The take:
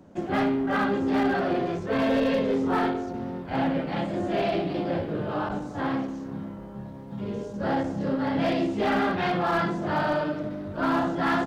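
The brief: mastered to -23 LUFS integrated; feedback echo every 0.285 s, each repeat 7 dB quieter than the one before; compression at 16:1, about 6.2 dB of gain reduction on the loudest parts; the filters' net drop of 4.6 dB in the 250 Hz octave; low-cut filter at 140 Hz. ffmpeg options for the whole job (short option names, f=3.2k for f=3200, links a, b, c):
-af "highpass=140,equalizer=f=250:t=o:g=-5,acompressor=threshold=-28dB:ratio=16,aecho=1:1:285|570|855|1140|1425:0.447|0.201|0.0905|0.0407|0.0183,volume=9.5dB"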